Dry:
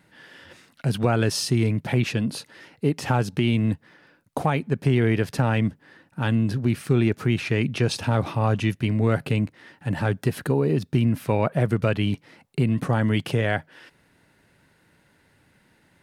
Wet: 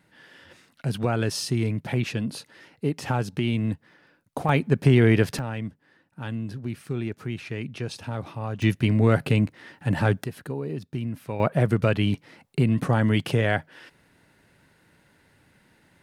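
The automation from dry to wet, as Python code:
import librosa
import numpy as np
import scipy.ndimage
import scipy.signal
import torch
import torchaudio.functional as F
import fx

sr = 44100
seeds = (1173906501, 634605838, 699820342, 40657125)

y = fx.gain(x, sr, db=fx.steps((0.0, -3.5), (4.49, 3.0), (5.39, -9.5), (8.62, 2.0), (10.24, -9.5), (11.4, 0.5)))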